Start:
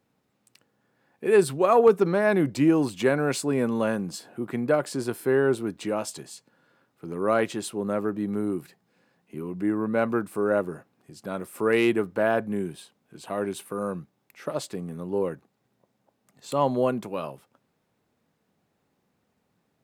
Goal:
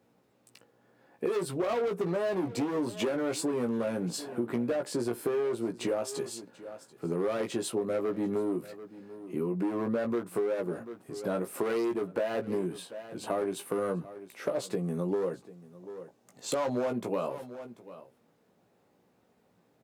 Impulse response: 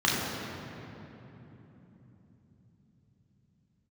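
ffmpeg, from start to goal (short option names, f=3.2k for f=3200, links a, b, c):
-filter_complex "[0:a]asoftclip=type=hard:threshold=-23dB,asettb=1/sr,asplit=3[a][b][c];[a]atrim=end=14.834[d];[b]atrim=start=14.83:end=16.91,asetpts=PTS-STARTPTS,afade=t=in:d=0.004:c=qsin,afade=t=out:st=2.076:d=0.004:c=qsin,equalizer=f=6.5k:t=o:w=0.88:g=6[e];[c]atrim=start=16.906[f];[d][e]acrossfade=d=0.004:c1=hsin:c2=qsin[g];[g][f]acrossfade=d=0.004:c1=qsin:c2=hsin,highpass=53,equalizer=f=490:t=o:w=1.9:g=6.5,asplit=2[h][i];[i]adelay=17,volume=-5dB[j];[h][j]amix=inputs=2:normalize=0,aecho=1:1:739:0.0841,acompressor=threshold=-27dB:ratio=10"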